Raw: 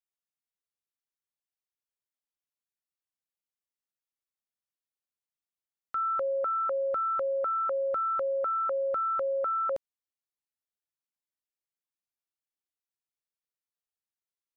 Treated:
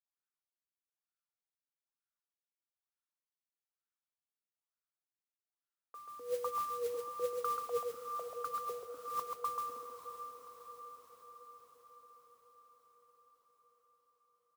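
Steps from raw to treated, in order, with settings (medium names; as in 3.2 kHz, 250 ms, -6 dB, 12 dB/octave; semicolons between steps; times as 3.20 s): differentiator; wah-wah 1.1 Hz 270–1600 Hz, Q 7.5; pitch shift -2 st; compressor with a negative ratio -53 dBFS, ratio -0.5; delay 135 ms -4.5 dB; modulation noise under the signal 15 dB; high-pass 67 Hz; bass shelf 290 Hz +5.5 dB; echo that smears into a reverb 591 ms, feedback 63%, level -9 dB; trim +16.5 dB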